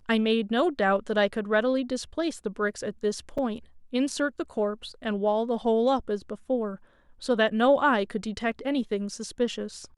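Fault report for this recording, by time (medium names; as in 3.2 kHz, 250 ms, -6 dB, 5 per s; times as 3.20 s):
3.38 s: dropout 4.8 ms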